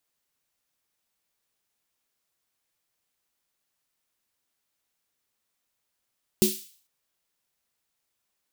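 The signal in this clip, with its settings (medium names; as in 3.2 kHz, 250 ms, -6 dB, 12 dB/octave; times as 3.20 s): snare drum length 0.45 s, tones 210 Hz, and 370 Hz, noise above 2.9 kHz, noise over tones -5 dB, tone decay 0.23 s, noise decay 0.49 s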